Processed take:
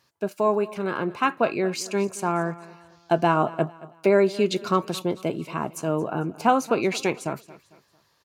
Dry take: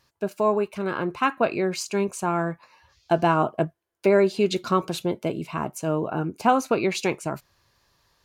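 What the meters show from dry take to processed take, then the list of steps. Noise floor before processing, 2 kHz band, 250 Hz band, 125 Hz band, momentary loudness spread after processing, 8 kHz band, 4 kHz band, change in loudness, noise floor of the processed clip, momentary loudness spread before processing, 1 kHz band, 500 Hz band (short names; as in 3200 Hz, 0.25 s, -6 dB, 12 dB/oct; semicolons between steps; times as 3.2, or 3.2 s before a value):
-70 dBFS, 0.0 dB, 0.0 dB, -0.5 dB, 9 LU, 0.0 dB, 0.0 dB, 0.0 dB, -66 dBFS, 9 LU, 0.0 dB, 0.0 dB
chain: HPF 110 Hz; on a send: feedback echo 0.225 s, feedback 39%, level -19 dB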